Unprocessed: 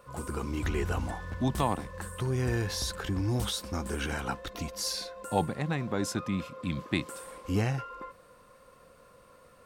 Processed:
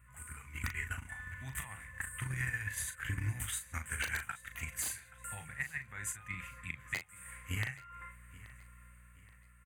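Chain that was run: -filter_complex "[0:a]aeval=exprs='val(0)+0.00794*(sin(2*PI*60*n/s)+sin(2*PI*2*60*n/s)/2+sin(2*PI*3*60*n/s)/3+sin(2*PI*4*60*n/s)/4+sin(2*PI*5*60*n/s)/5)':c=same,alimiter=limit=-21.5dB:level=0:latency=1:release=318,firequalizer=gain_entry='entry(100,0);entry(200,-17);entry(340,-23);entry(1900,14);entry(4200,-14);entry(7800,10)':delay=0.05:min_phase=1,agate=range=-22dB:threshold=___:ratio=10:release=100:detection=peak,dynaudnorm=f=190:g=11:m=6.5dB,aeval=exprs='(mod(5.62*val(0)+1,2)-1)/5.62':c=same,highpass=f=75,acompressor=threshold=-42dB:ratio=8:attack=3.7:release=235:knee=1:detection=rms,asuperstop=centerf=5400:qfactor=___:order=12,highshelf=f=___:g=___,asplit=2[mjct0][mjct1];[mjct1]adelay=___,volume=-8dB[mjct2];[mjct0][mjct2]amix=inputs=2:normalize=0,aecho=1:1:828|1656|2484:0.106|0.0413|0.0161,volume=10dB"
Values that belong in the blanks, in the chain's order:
-31dB, 7.5, 7.1k, -4, 38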